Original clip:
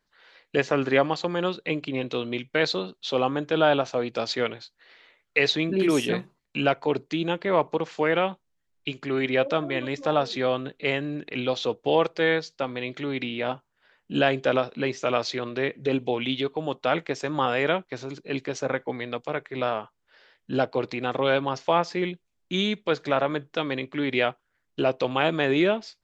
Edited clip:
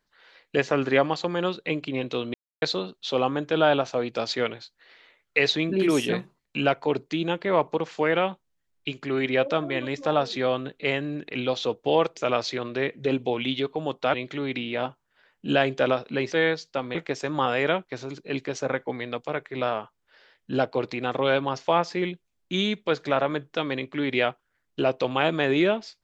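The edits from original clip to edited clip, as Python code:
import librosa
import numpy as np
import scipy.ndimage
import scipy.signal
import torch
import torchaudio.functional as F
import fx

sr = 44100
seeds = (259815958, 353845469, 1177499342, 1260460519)

y = fx.edit(x, sr, fx.silence(start_s=2.34, length_s=0.28),
    fx.swap(start_s=12.17, length_s=0.63, other_s=14.98, other_length_s=1.97), tone=tone)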